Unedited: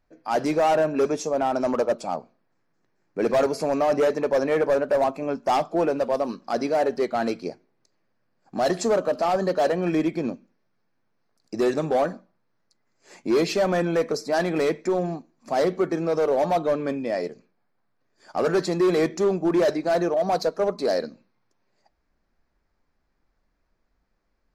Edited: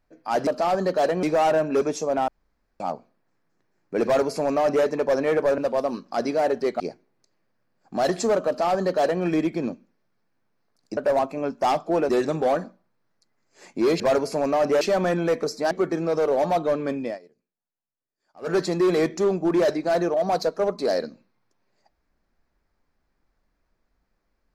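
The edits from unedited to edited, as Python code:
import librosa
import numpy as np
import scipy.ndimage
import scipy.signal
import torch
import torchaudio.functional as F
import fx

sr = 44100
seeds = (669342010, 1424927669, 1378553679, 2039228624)

y = fx.edit(x, sr, fx.room_tone_fill(start_s=1.52, length_s=0.52),
    fx.duplicate(start_s=3.28, length_s=0.81, to_s=13.49),
    fx.move(start_s=4.82, length_s=1.12, to_s=11.58),
    fx.cut(start_s=7.16, length_s=0.25),
    fx.duplicate(start_s=9.08, length_s=0.76, to_s=0.47),
    fx.cut(start_s=14.39, length_s=1.32),
    fx.fade_down_up(start_s=17.06, length_s=1.48, db=-22.0, fade_s=0.13), tone=tone)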